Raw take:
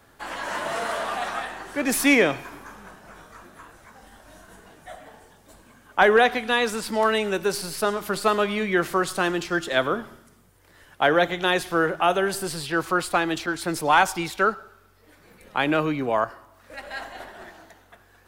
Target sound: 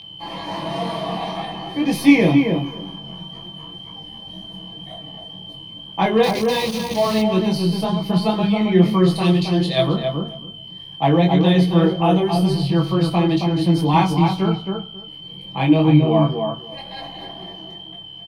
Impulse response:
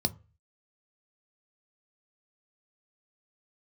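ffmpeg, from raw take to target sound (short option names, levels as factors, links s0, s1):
-filter_complex "[0:a]asettb=1/sr,asplit=3[s0][s1][s2];[s0]atrim=end=9.154[s3];[s1]atrim=start=9.15:end=9.86,asetpts=PTS-STARTPTS,afade=t=in:d=0.004:c=qsin,afade=t=out:st=0.706:d=0.004:c=qsin,equalizer=f=250:t=o:w=0.67:g=-10,equalizer=f=4000:t=o:w=0.67:g=8,equalizer=f=10000:t=o:w=0.67:g=10[s4];[s2]atrim=start=9.856[s5];[s3][s4]acrossfade=d=0.004:c1=hsin:c2=qsin[s6];[s6][s5]acrossfade=d=0.004:c1=qsin:c2=hsin,acrossover=split=340|2400[s7][s8][s9];[s7]acontrast=52[s10];[s10][s8][s9]amix=inputs=3:normalize=0,equalizer=f=11000:t=o:w=2.2:g=-4.5,aecho=1:1:6.1:0.73,aeval=exprs='val(0)+0.0501*sin(2*PI*3100*n/s)':c=same,flanger=delay=20:depth=3.6:speed=2,asettb=1/sr,asplit=3[s11][s12][s13];[s11]atrim=end=6.234[s14];[s12]atrim=start=6.23:end=7.22,asetpts=PTS-STARTPTS,afade=t=in:d=0.004:c=qsin,afade=t=out:st=0.986:d=0.004:c=qsin,aeval=exprs='val(0)*gte(abs(val(0)),0.0631)':c=same[s15];[s13]atrim=start=7.216[s16];[s14][s15]acrossfade=d=0.004:c1=hsin:c2=qsin[s17];[s17][s16]acrossfade=d=0.004:c1=qsin:c2=hsin,asplit=2[s18][s19];[s19]adelay=271,lowpass=f=1500:p=1,volume=0.631,asplit=2[s20][s21];[s21]adelay=271,lowpass=f=1500:p=1,volume=0.16,asplit=2[s22][s23];[s23]adelay=271,lowpass=f=1500:p=1,volume=0.16[s24];[s18][s20][s22][s24]amix=inputs=4:normalize=0,asplit=2[s25][s26];[1:a]atrim=start_sample=2205,lowshelf=f=400:g=-2.5[s27];[s26][s27]afir=irnorm=-1:irlink=0,volume=1.41[s28];[s25][s28]amix=inputs=2:normalize=0,volume=0.422"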